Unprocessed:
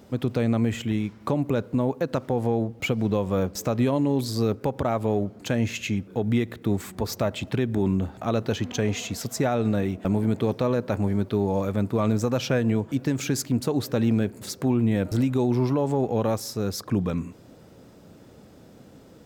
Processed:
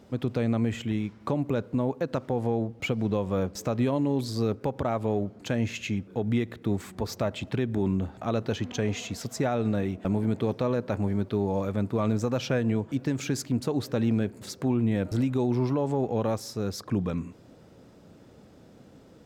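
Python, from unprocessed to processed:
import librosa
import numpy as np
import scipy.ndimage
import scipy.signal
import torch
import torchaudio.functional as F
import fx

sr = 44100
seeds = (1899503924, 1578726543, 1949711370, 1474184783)

y = fx.high_shelf(x, sr, hz=11000.0, db=-10.5)
y = y * librosa.db_to_amplitude(-3.0)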